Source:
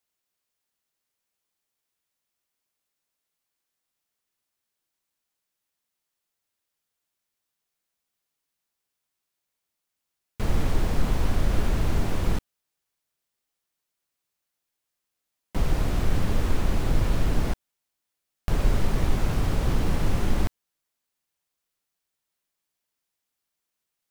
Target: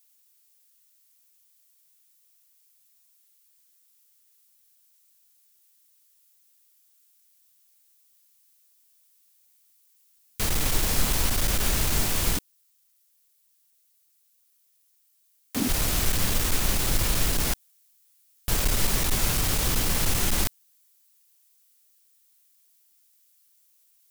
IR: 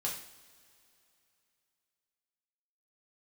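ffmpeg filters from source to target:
-filter_complex "[0:a]crystalizer=i=9.5:c=0,aeval=exprs='clip(val(0),-1,0.15)':channel_layout=same,asettb=1/sr,asplit=3[link_01][link_02][link_03];[link_01]atrim=end=12.374[link_04];[link_02]atrim=start=12.37:end=15.69,asetpts=PTS-STARTPTS,afade=type=in:duration=0.004:curve=qsin,afade=type=out:start_time=3.316:duration=0.004:curve=qsin,aeval=exprs='val(0)*sin(2*PI*250*n/s)':channel_layout=same[link_05];[link_03]atrim=start=15.686[link_06];[link_04][link_05]acrossfade=duration=0.004:curve1=hsin:curve2=qsin[link_07];[link_07][link_06]acrossfade=duration=0.004:curve1=qsin:curve2=hsin,volume=-3dB"

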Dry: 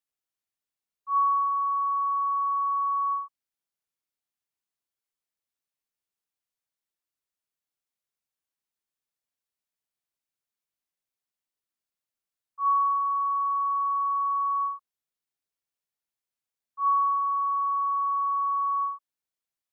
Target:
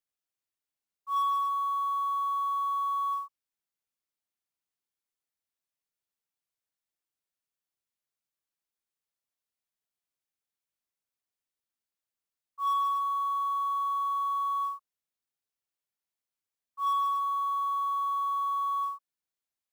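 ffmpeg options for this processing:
ffmpeg -i in.wav -af "asoftclip=type=tanh:threshold=-20dB,acrusher=bits=7:mode=log:mix=0:aa=0.000001,volume=-2.5dB" out.wav

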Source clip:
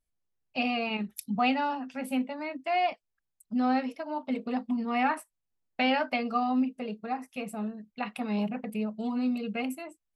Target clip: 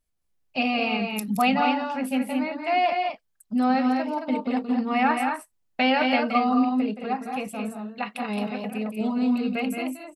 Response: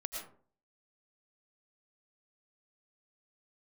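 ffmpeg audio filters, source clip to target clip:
-filter_complex "[0:a]asettb=1/sr,asplit=3[link_01][link_02][link_03];[link_01]atrim=end=7.474[link_04];[link_02]atrim=start=7.47:end=9.01,asetpts=PTS-STARTPTS,afade=type=in:duration=0.004:curve=qsin,afade=type=out:start_time=1.536:duration=0.004:curve=qsin,lowshelf=frequency=250:gain=-8[link_05];[link_03]atrim=start=9.006[link_06];[link_04][link_05]acrossfade=duration=0.004:curve1=hsin:curve2=qsin[link_07];[link_07][link_06]acrossfade=duration=0.004:curve1=qsin:curve2=hsin,asplit=2[link_08][link_09];[link_09]aecho=0:1:172|218.7:0.355|0.562[link_10];[link_08][link_10]amix=inputs=2:normalize=0,volume=4.5dB"

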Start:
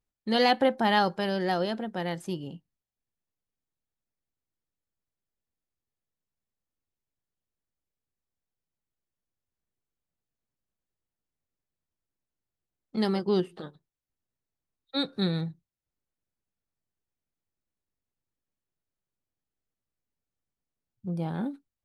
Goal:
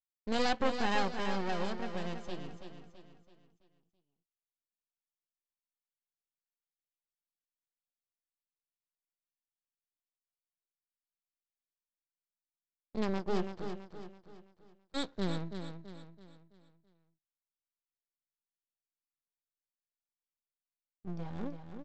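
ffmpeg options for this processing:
ffmpeg -i in.wav -af "agate=range=-23dB:threshold=-52dB:ratio=16:detection=peak,aresample=16000,aeval=exprs='max(val(0),0)':channel_layout=same,aresample=44100,aecho=1:1:331|662|993|1324|1655:0.398|0.167|0.0702|0.0295|0.0124,volume=-3.5dB" out.wav

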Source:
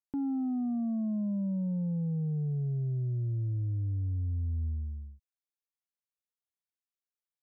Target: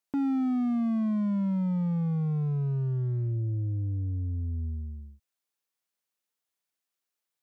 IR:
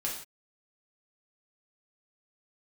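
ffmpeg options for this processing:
-af "highpass=frequency=190:poles=1,volume=32.5dB,asoftclip=hard,volume=-32.5dB,volume=8dB"

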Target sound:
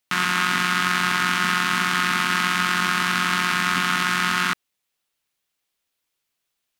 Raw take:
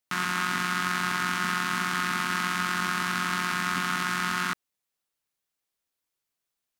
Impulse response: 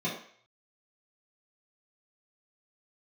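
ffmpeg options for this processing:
-af "equalizer=frequency=2900:width=1.1:gain=4.5,volume=5dB"

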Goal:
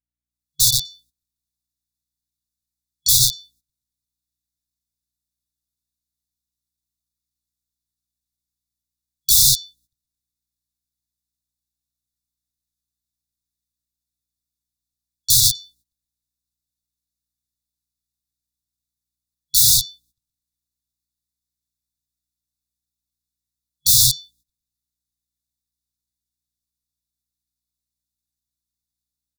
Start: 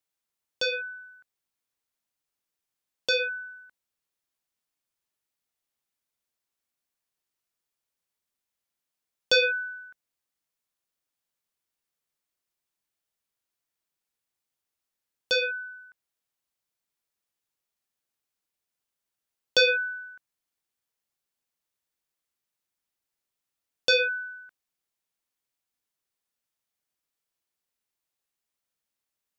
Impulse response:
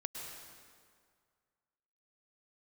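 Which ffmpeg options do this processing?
-filter_complex "[0:a]aecho=1:1:121|242:0.355|0.0532,asplit=4[link_01][link_02][link_03][link_04];[link_02]asetrate=33038,aresample=44100,atempo=1.33484,volume=-1dB[link_05];[link_03]asetrate=55563,aresample=44100,atempo=0.793701,volume=-8dB[link_06];[link_04]asetrate=58866,aresample=44100,atempo=0.749154,volume=-16dB[link_07];[link_01][link_05][link_06][link_07]amix=inputs=4:normalize=0,acrossover=split=200[link_08][link_09];[link_09]aeval=exprs='(mod(10*val(0)+1,2)-1)/10':channel_layout=same[link_10];[link_08][link_10]amix=inputs=2:normalize=0,dynaudnorm=framelen=110:gausssize=7:maxgain=15dB,afftfilt=real='re*(1-between(b*sr/4096,140,3400))':imag='im*(1-between(b*sr/4096,140,3400))':win_size=4096:overlap=0.75,aeval=exprs='val(0)+0.000178*(sin(2*PI*60*n/s)+sin(2*PI*2*60*n/s)/2+sin(2*PI*3*60*n/s)/3+sin(2*PI*4*60*n/s)/4+sin(2*PI*5*60*n/s)/5)':channel_layout=same,agate=range=-17dB:threshold=-52dB:ratio=16:detection=peak,volume=-1dB"

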